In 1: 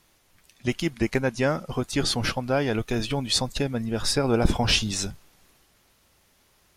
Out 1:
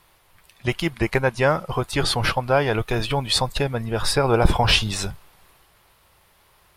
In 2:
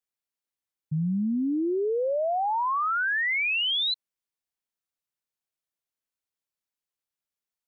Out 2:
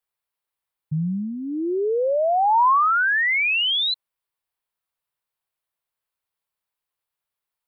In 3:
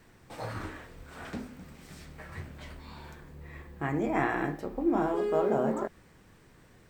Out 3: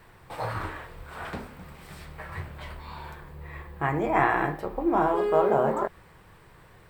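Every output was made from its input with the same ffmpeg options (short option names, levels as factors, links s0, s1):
-af "equalizer=f=250:t=o:w=0.67:g=-10,equalizer=f=1000:t=o:w=0.67:g=5,equalizer=f=6300:t=o:w=0.67:g=-9,volume=1.88"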